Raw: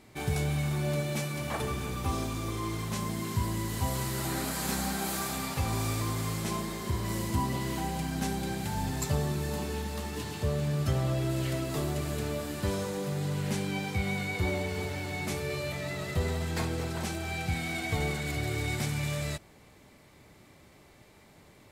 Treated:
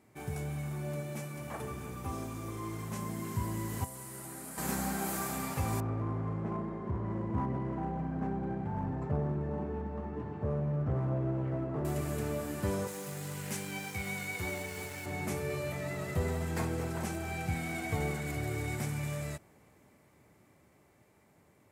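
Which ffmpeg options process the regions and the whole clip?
-filter_complex "[0:a]asettb=1/sr,asplit=3[a][b][c];[a]atrim=end=3.844[d];[b]atrim=start=3.84:end=4.58,asetpts=PTS-STARTPTS,afade=t=in:d=0.004:c=qsin,afade=t=out:st=0.736:d=0.004:c=qsin,highpass=f=140:p=1,equalizer=f=9.5k:t=o:w=0.39:g=8.5,acrossover=split=350|4500[e][f][g];[e]acompressor=threshold=-47dB:ratio=4[h];[f]acompressor=threshold=-48dB:ratio=4[i];[g]acompressor=threshold=-44dB:ratio=4[j];[h][i][j]amix=inputs=3:normalize=0[k];[c]atrim=start=4.576[l];[d][k]acrossfade=d=0.004:c1=hsin:c2=qsin[m];[m][l]acrossfade=d=0.004:c1=qsin:c2=hsin,asettb=1/sr,asplit=3[n][o][p];[n]atrim=end=5.804[q];[o]atrim=start=5.8:end=11.85,asetpts=PTS-STARTPTS,afade=t=in:d=0.004:c=qsin,afade=t=out:st=6.046:d=0.004:c=qsin,lowpass=1.1k,aeval=exprs='clip(val(0),-1,0.0335)':c=same[r];[p]atrim=start=11.846[s];[q][r]acrossfade=d=0.004:c1=hsin:c2=qsin[t];[t][s]acrossfade=d=0.004:c1=qsin:c2=hsin,asettb=1/sr,asplit=3[u][v][w];[u]atrim=end=12.874[x];[v]atrim=start=12.87:end=15.06,asetpts=PTS-STARTPTS,afade=t=in:d=0.004:c=qsin,afade=t=out:st=2.186:d=0.004:c=qsin,tiltshelf=f=1.4k:g=-6.5,aeval=exprs='sgn(val(0))*max(abs(val(0))-0.00376,0)':c=same[y];[w]atrim=start=15.056[z];[x][y]acrossfade=d=0.004:c1=hsin:c2=qsin[aa];[aa][z]acrossfade=d=0.004:c1=qsin:c2=hsin,highpass=72,equalizer=f=3.9k:t=o:w=1.1:g=-10,dynaudnorm=f=500:g=13:m=6dB,volume=-7dB"

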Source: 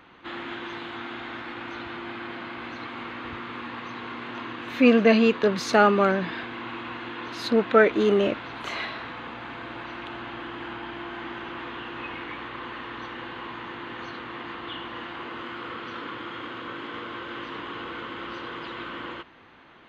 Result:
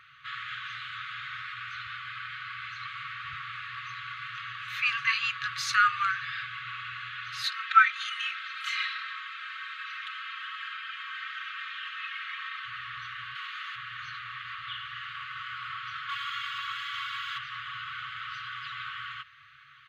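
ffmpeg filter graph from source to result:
-filter_complex "[0:a]asettb=1/sr,asplit=3[a][b][c];[a]atrim=end=7.434[d];[b]atrim=start=7.43:end=12.66,asetpts=PTS-STARTPTS,afade=t=in:d=0.004:c=qsin,afade=t=out:st=5.226:d=0.004:c=qsin,highpass=1.1k,aecho=1:1:3.8:0.81,atrim=end_sample=230643[e];[c]atrim=start=12.656[f];[d][e]acrossfade=d=0.004:c1=hsin:c2=qsin[g];[g][f]acrossfade=d=0.004:c1=qsin:c2=hsin,asettb=1/sr,asplit=3[h][i][j];[h]atrim=end=13.354[k];[i]atrim=start=13.35:end=13.76,asetpts=PTS-STARTPTS,afade=t=in:d=0.004:c=qsin,afade=t=out:st=0.406:d=0.004:c=qsin,highpass=f=300:w=0.5412,highpass=f=300:w=1.3066,highshelf=f=3.4k:g=8[l];[j]atrim=start=13.756[m];[k][l]acrossfade=d=0.004:c1=hsin:c2=qsin[n];[n][m]acrossfade=d=0.004:c1=qsin:c2=hsin,asettb=1/sr,asplit=3[o][p][q];[o]atrim=end=16.094[r];[p]atrim=start=16.09:end=17.38,asetpts=PTS-STARTPTS,afade=t=in:d=0.004:c=qsin,afade=t=out:st=1.286:d=0.004:c=qsin,aemphasis=mode=production:type=75kf,aecho=1:1:3.6:0.63,atrim=end_sample=56889[s];[q]atrim=start=17.376[t];[r][s]acrossfade=d=0.004:c1=hsin:c2=qsin[u];[u][t]acrossfade=d=0.004:c1=qsin:c2=hsin,highpass=110,aecho=1:1:5.4:0.34,afftfilt=real='re*(1-between(b*sr/4096,140,1100))':imag='im*(1-between(b*sr/4096,140,1100))':win_size=4096:overlap=0.75"

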